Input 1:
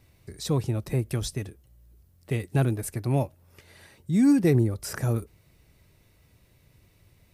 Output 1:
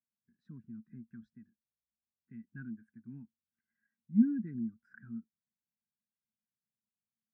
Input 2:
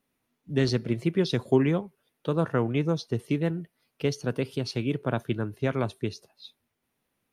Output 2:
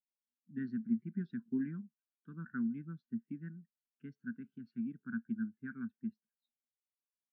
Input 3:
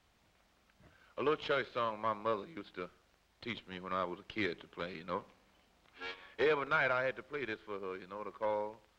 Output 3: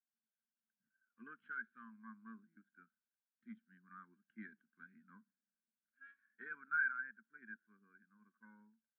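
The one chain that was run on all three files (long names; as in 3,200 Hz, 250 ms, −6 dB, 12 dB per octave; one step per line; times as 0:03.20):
pair of resonant band-passes 590 Hz, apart 2.8 octaves
every bin expanded away from the loudest bin 1.5 to 1
level +1 dB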